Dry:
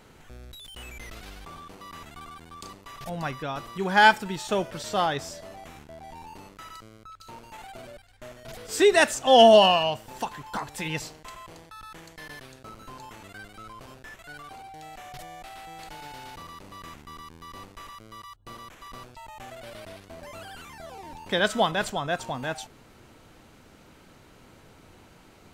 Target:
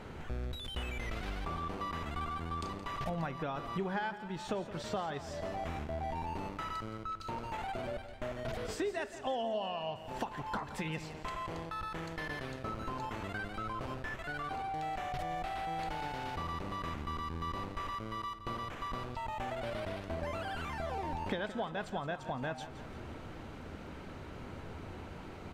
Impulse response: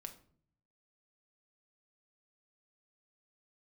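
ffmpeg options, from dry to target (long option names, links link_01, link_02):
-filter_complex "[0:a]acompressor=threshold=-40dB:ratio=12,lowpass=frequency=2200:poles=1,equalizer=frequency=78:width_type=o:width=0.31:gain=8.5,aecho=1:1:170|340|510|680|850:0.224|0.114|0.0582|0.0297|0.0151,asplit=2[link_01][link_02];[1:a]atrim=start_sample=2205,lowpass=5100[link_03];[link_02][link_03]afir=irnorm=-1:irlink=0,volume=-7dB[link_04];[link_01][link_04]amix=inputs=2:normalize=0,volume=5dB"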